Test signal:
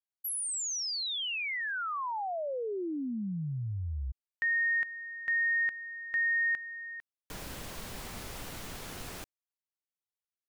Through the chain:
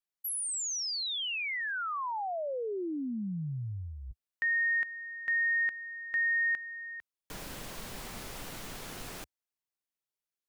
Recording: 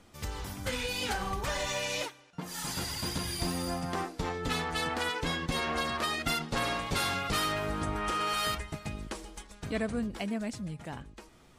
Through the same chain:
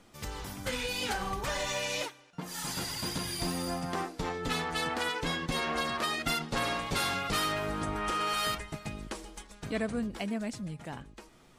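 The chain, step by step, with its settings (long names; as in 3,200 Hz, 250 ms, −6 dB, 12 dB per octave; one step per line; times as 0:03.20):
parametric band 73 Hz −8.5 dB 0.63 octaves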